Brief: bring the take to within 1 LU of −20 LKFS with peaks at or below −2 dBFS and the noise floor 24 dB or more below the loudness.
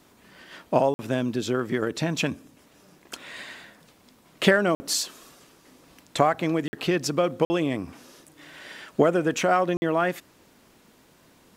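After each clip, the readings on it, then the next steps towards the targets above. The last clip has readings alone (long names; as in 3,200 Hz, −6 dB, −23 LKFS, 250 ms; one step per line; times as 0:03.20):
number of dropouts 5; longest dropout 50 ms; integrated loudness −25.0 LKFS; sample peak −3.5 dBFS; target loudness −20.0 LKFS
→ repair the gap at 0:00.94/0:04.75/0:06.68/0:07.45/0:09.77, 50 ms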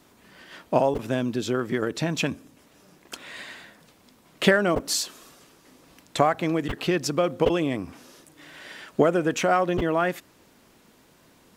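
number of dropouts 0; integrated loudness −24.5 LKFS; sample peak −3.5 dBFS; target loudness −20.0 LKFS
→ level +4.5 dB
brickwall limiter −2 dBFS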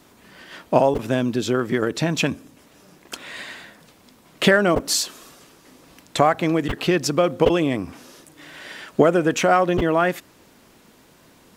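integrated loudness −20.5 LKFS; sample peak −2.0 dBFS; background noise floor −53 dBFS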